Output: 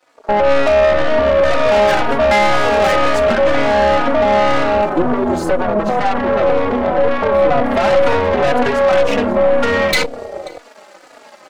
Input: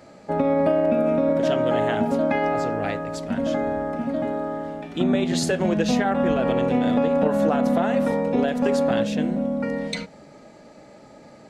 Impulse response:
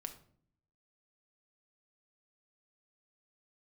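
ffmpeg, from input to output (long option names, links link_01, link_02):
-filter_complex "[0:a]acompressor=threshold=-28dB:ratio=10,asettb=1/sr,asplit=3[link_01][link_02][link_03];[link_01]atrim=end=4.894[link_04];[link_02]atrim=start=4.89:end=7.71,asetpts=PTS-STARTPTS,afade=type=in:duration=0.004:curve=qsin,afade=type=out:start_time=2.816:duration=0.004:curve=qsin,equalizer=frequency=4200:width=0.33:gain=-12[link_05];[link_03]atrim=start=7.706[link_06];[link_04][link_05]acrossfade=duration=0.004:curve1=hsin:curve2=qsin[link_07];[link_07][link_06]acrossfade=duration=0.004:curve1=qsin:curve2=hsin,aeval=exprs='sgn(val(0))*max(abs(val(0))-0.00422,0)':channel_layout=same,highpass=510,aecho=1:1:536:0.112,afwtdn=0.00501,dynaudnorm=framelen=250:gausssize=3:maxgain=15dB,aeval=exprs='(tanh(20*val(0)+0.7)-tanh(0.7))/20':channel_layout=same,alimiter=level_in=26dB:limit=-1dB:release=50:level=0:latency=1,asplit=2[link_08][link_09];[link_09]adelay=3.5,afreqshift=-2[link_10];[link_08][link_10]amix=inputs=2:normalize=1,volume=-2.5dB"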